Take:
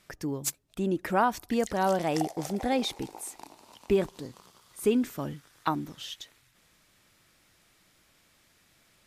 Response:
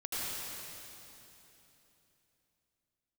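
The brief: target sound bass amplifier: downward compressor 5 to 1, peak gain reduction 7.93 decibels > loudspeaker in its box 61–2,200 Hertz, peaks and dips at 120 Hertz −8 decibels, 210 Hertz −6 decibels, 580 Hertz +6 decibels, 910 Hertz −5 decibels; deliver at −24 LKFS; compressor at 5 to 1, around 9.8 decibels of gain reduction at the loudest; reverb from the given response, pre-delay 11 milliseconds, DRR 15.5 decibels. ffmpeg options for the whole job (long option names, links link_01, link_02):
-filter_complex "[0:a]acompressor=threshold=-30dB:ratio=5,asplit=2[link_01][link_02];[1:a]atrim=start_sample=2205,adelay=11[link_03];[link_02][link_03]afir=irnorm=-1:irlink=0,volume=-20.5dB[link_04];[link_01][link_04]amix=inputs=2:normalize=0,acompressor=threshold=-35dB:ratio=5,highpass=frequency=61:width=0.5412,highpass=frequency=61:width=1.3066,equalizer=frequency=120:width_type=q:width=4:gain=-8,equalizer=frequency=210:width_type=q:width=4:gain=-6,equalizer=frequency=580:width_type=q:width=4:gain=6,equalizer=frequency=910:width_type=q:width=4:gain=-5,lowpass=frequency=2200:width=0.5412,lowpass=frequency=2200:width=1.3066,volume=18.5dB"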